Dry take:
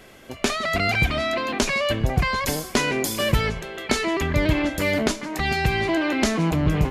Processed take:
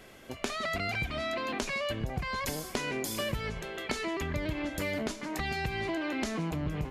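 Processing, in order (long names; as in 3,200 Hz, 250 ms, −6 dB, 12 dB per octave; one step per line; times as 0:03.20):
downward compressor, threshold −25 dBFS, peak gain reduction 10.5 dB
level −5 dB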